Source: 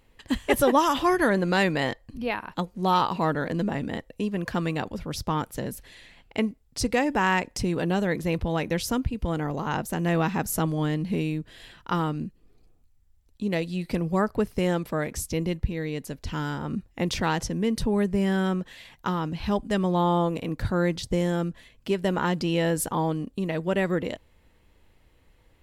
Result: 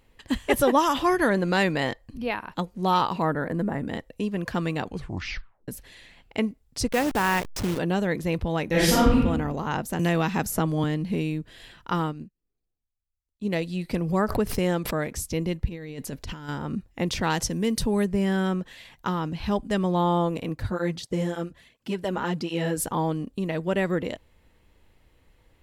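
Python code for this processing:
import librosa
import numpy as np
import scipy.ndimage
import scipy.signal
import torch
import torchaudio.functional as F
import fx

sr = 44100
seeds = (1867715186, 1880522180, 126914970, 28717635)

y = fx.band_shelf(x, sr, hz=4100.0, db=-12.0, octaves=1.7, at=(3.22, 3.88))
y = fx.delta_hold(y, sr, step_db=-27.0, at=(6.87, 7.77), fade=0.02)
y = fx.reverb_throw(y, sr, start_s=8.7, length_s=0.47, rt60_s=0.94, drr_db=-9.5)
y = fx.band_squash(y, sr, depth_pct=70, at=(9.99, 10.84))
y = fx.upward_expand(y, sr, threshold_db=-42.0, expansion=2.5, at=(12.03, 13.45))
y = fx.pre_swell(y, sr, db_per_s=95.0, at=(14.05, 15.09))
y = fx.over_compress(y, sr, threshold_db=-34.0, ratio=-0.5, at=(15.67, 16.49))
y = fx.high_shelf(y, sr, hz=4300.0, db=9.0, at=(17.3, 18.05))
y = fx.flanger_cancel(y, sr, hz=1.4, depth_ms=7.3, at=(20.52, 22.76), fade=0.02)
y = fx.edit(y, sr, fx.tape_stop(start_s=4.85, length_s=0.83), tone=tone)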